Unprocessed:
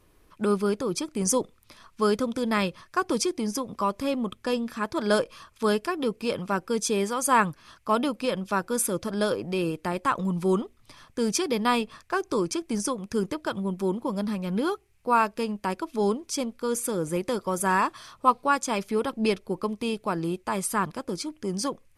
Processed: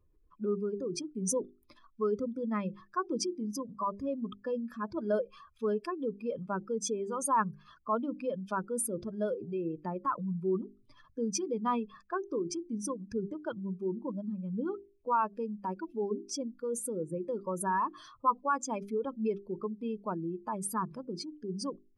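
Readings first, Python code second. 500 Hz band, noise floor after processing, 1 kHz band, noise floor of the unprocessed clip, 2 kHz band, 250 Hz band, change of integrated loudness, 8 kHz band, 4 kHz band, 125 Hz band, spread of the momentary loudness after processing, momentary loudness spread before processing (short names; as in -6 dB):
-7.0 dB, -66 dBFS, -6.5 dB, -61 dBFS, -13.5 dB, -7.5 dB, -7.5 dB, -7.5 dB, -13.0 dB, -7.5 dB, 7 LU, 6 LU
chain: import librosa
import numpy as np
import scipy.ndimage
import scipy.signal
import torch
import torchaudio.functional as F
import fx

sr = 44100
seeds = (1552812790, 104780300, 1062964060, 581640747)

y = fx.spec_expand(x, sr, power=2.1)
y = fx.hum_notches(y, sr, base_hz=50, count=8)
y = y * librosa.db_to_amplitude(-6.5)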